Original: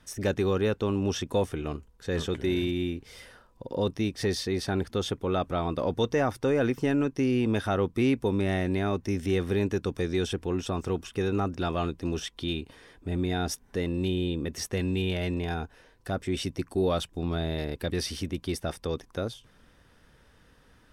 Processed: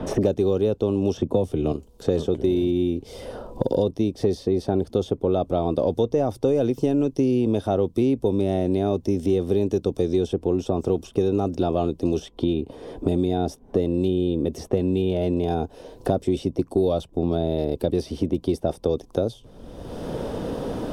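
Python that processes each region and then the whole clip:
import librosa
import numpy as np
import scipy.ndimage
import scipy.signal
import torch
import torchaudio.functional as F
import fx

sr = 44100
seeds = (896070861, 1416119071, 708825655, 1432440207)

y = fx.chain(x, sr, fx.bass_treble(bass_db=6, treble_db=-5),
    fx.band_squash(depth_pct=40), at=(1.17, 1.72))
y = fx.curve_eq(y, sr, hz=(140.0, 390.0, 650.0, 1800.0, 3300.0), db=(0, 5, 5, -18, -6))
y = fx.band_squash(y, sr, depth_pct=100)
y = y * 10.0 ** (2.0 / 20.0)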